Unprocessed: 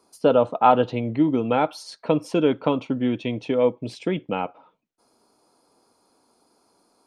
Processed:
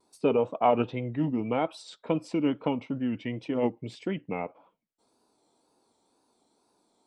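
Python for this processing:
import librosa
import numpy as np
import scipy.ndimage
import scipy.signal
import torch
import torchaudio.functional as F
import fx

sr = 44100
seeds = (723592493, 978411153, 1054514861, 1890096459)

y = fx.wow_flutter(x, sr, seeds[0], rate_hz=2.1, depth_cents=86.0)
y = fx.formant_shift(y, sr, semitones=-2)
y = y * 10.0 ** (-6.5 / 20.0)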